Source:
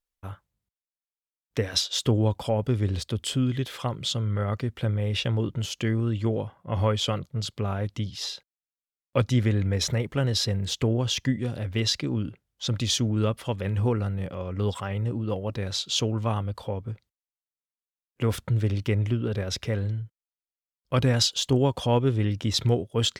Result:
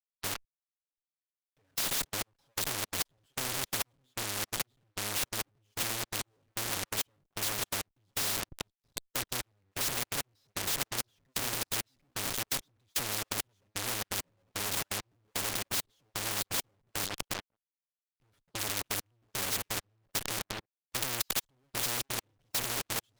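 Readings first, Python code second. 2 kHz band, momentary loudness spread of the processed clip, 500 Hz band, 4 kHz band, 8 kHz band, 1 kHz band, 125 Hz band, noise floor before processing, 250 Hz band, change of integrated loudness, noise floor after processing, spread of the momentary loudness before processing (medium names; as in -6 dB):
+0.5 dB, 7 LU, -15.0 dB, -6.0 dB, +1.5 dB, -5.0 dB, -22.0 dB, under -85 dBFS, -18.0 dB, -7.0 dB, under -85 dBFS, 9 LU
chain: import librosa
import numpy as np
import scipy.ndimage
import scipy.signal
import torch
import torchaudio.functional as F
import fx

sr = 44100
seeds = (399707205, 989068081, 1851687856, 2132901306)

p1 = fx.echo_feedback(x, sr, ms=624, feedback_pct=26, wet_db=-11.0)
p2 = fx.schmitt(p1, sr, flips_db=-34.5)
p3 = p1 + F.gain(torch.from_numpy(p2), -3.5).numpy()
p4 = p3 + 0.69 * np.pad(p3, (int(7.2 * sr / 1000.0), 0))[:len(p3)]
p5 = fx.fuzz(p4, sr, gain_db=44.0, gate_db=-37.0)
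p6 = fx.step_gate(p5, sr, bpm=169, pattern='..xxx.x..', floor_db=-60.0, edge_ms=4.5)
y = fx.spectral_comp(p6, sr, ratio=4.0)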